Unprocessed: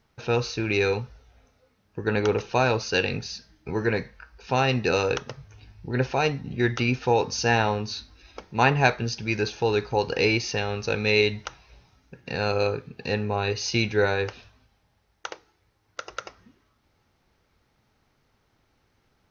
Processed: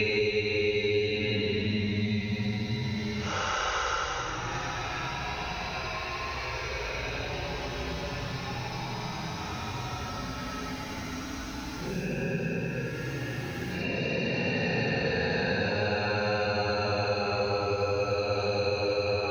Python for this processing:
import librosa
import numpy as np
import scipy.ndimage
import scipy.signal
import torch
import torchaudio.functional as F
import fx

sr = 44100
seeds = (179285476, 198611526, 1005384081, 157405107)

p1 = fx.over_compress(x, sr, threshold_db=-28.0, ratio=-1.0)
p2 = x + (p1 * 10.0 ** (-2.5 / 20.0))
p3 = fx.paulstretch(p2, sr, seeds[0], factor=13.0, window_s=0.1, from_s=11.18)
p4 = p3 + fx.echo_single(p3, sr, ms=94, db=-4.0, dry=0)
p5 = fx.band_squash(p4, sr, depth_pct=100)
y = p5 * 10.0 ** (-8.0 / 20.0)